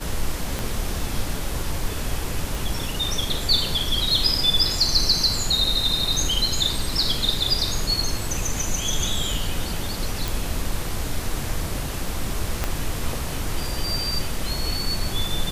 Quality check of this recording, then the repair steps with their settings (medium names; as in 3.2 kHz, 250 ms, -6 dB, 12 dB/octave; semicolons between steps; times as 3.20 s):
0.59 s: pop -12 dBFS
2.55 s: pop
10.28 s: pop
12.64 s: pop -8 dBFS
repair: de-click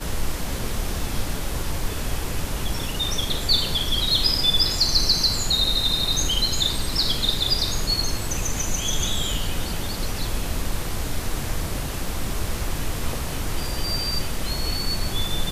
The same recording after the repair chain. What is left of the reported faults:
0.59 s: pop
12.64 s: pop